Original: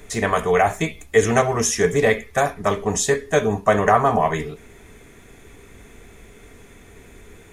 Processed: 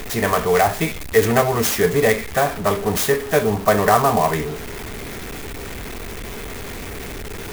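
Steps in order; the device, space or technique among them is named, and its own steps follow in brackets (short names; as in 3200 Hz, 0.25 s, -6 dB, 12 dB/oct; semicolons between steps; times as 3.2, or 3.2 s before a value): early CD player with a faulty converter (zero-crossing step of -26 dBFS; clock jitter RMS 0.036 ms)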